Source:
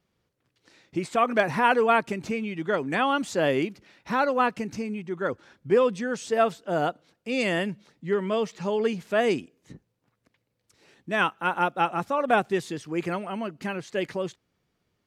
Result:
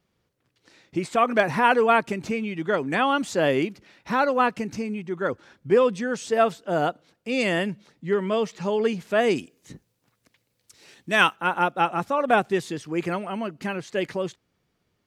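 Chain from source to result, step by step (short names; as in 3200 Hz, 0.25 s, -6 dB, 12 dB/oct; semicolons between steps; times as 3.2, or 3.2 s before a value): 9.35–11.35 high shelf 3700 Hz -> 2100 Hz +10.5 dB; gain +2 dB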